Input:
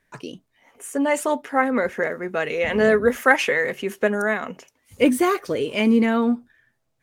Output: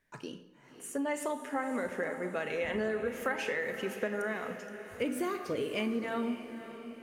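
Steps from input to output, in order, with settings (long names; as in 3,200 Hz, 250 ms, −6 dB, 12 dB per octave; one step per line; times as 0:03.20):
convolution reverb RT60 0.80 s, pre-delay 27 ms, DRR 9 dB
downward compressor, threshold −22 dBFS, peak gain reduction 12 dB
feedback delay with all-pass diffusion 548 ms, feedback 52%, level −12 dB
level −8 dB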